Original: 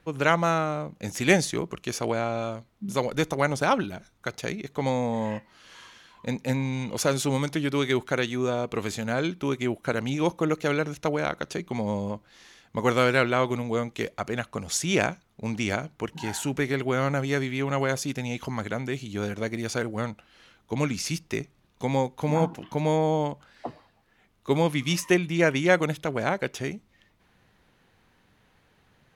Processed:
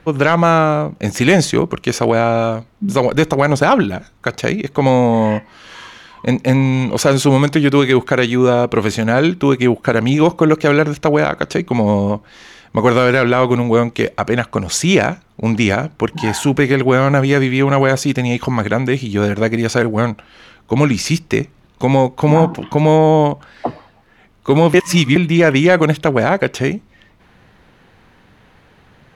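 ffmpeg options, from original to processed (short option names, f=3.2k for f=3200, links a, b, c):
-filter_complex "[0:a]asplit=3[a][b][c];[a]atrim=end=24.742[d];[b]atrim=start=24.738:end=25.162,asetpts=PTS-STARTPTS,areverse[e];[c]atrim=start=25.158[f];[d][e]acrossfade=d=0.004:c1=hsin:c2=hsin[g];[g][f]acrossfade=d=0.004:c1=hsin:c2=hsin,highshelf=f=4.7k:g=-9,acontrast=84,alimiter=level_in=8.5dB:limit=-1dB:release=50:level=0:latency=1,volume=-1dB"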